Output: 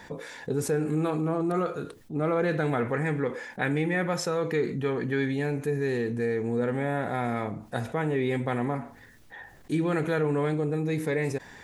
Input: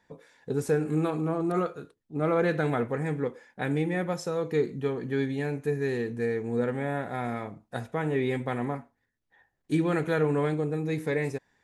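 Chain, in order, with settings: 2.78–5.34 dynamic EQ 1800 Hz, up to +6 dB, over -47 dBFS, Q 0.85; fast leveller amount 50%; gain -2.5 dB

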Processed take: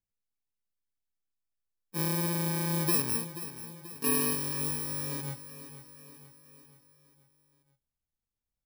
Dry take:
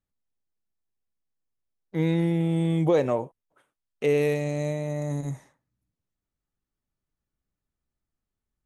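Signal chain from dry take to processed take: FFT order left unsorted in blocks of 64 samples; 3.15–5.21 comb 4.3 ms, depth 68%; feedback echo 0.483 s, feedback 54%, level -13.5 dB; gain -6.5 dB

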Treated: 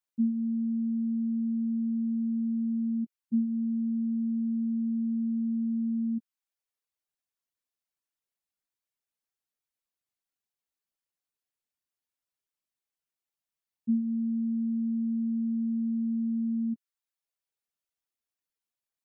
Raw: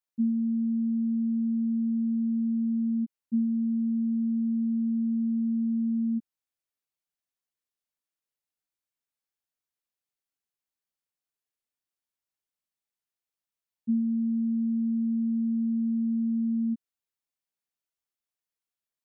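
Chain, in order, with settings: reverb removal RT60 0.63 s

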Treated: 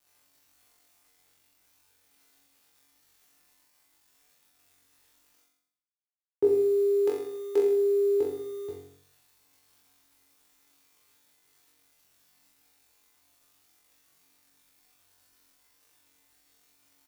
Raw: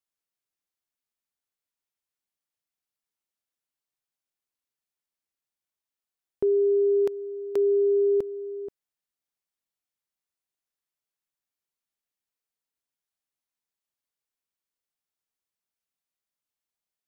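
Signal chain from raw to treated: HPF 95 Hz 24 dB/oct; comb 2.4 ms, depth 82%; reverse; upward compressor, threshold -41 dBFS; reverse; bit-crush 9-bit; on a send: flutter echo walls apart 3.7 m, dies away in 0.71 s; on the sum: FDN reverb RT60 0.48 s, low-frequency decay 1.2×, high-frequency decay 1×, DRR 2.5 dB; gain -3.5 dB

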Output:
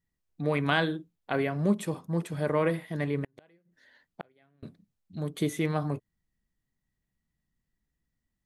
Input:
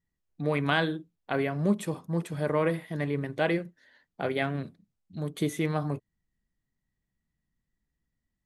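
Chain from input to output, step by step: 3.24–4.63 flipped gate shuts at -24 dBFS, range -36 dB

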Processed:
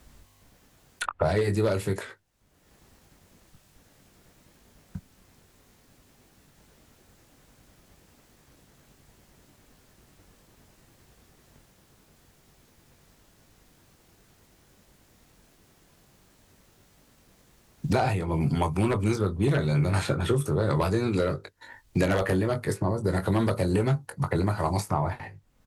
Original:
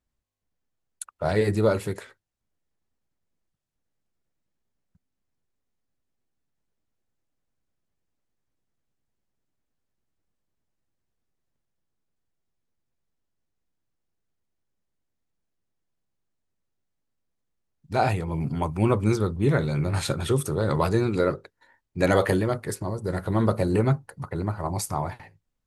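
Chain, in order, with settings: doubler 21 ms -8.5 dB; added harmonics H 5 -6 dB, 7 -15 dB, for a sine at -5.5 dBFS; three-band squash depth 100%; gain -9 dB

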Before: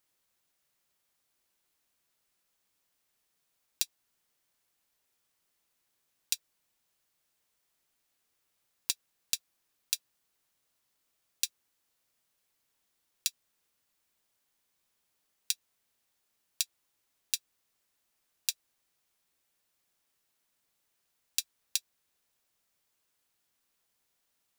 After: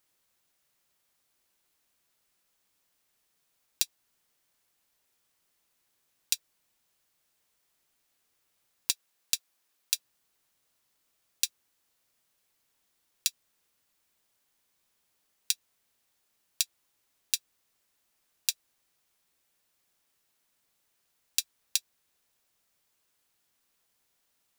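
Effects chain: 8.92–9.95 low shelf 230 Hz -10 dB; gain +3 dB

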